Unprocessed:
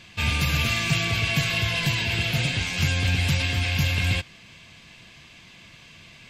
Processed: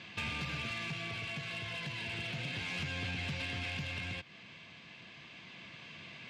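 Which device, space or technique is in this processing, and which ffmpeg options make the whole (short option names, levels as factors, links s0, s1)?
AM radio: -af "highpass=140,lowpass=3800,acompressor=threshold=0.0224:ratio=8,asoftclip=type=tanh:threshold=0.0299,tremolo=f=0.32:d=0.31"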